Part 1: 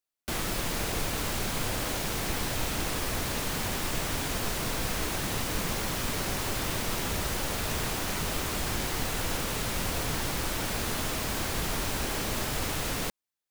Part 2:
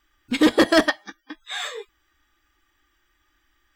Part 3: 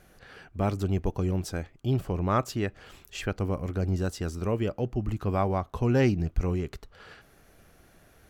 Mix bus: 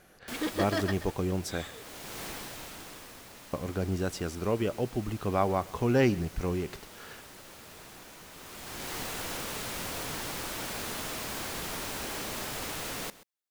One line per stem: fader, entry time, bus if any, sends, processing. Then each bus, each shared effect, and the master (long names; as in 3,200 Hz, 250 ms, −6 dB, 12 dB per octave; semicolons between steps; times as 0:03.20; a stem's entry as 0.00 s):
−4.0 dB, 0.00 s, no send, echo send −17.5 dB, automatic ducking −15 dB, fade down 1.30 s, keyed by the third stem
−15.0 dB, 0.00 s, no send, echo send −12 dB, no processing
+1.0 dB, 0.00 s, muted 0:01.70–0:03.53, no send, echo send −22.5 dB, no processing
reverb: not used
echo: single-tap delay 131 ms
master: low-shelf EQ 120 Hz −11.5 dB